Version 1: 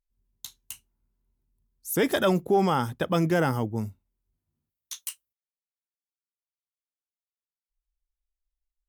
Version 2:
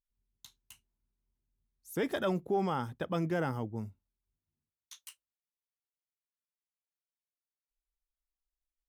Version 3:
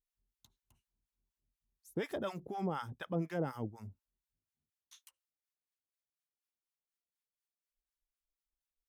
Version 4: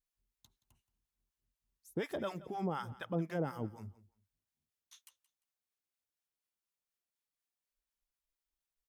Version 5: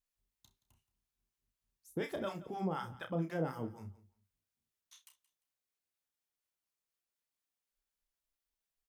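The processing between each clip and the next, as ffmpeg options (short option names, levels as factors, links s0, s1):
-af "highshelf=f=5400:g=-9.5,volume=0.376"
-filter_complex "[0:a]acrossover=split=820[s0][s1];[s0]aeval=exprs='val(0)*(1-1/2+1/2*cos(2*PI*4.1*n/s))':c=same[s2];[s1]aeval=exprs='val(0)*(1-1/2-1/2*cos(2*PI*4.1*n/s))':c=same[s3];[s2][s3]amix=inputs=2:normalize=0"
-af "aecho=1:1:174|348:0.112|0.0292"
-af "aecho=1:1:31|64:0.447|0.126,volume=0.891"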